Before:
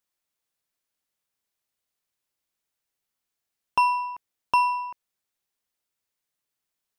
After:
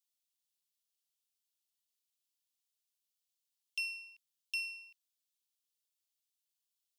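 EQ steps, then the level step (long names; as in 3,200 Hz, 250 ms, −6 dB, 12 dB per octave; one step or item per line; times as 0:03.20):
Butterworth high-pass 2,800 Hz 36 dB per octave
−3.0 dB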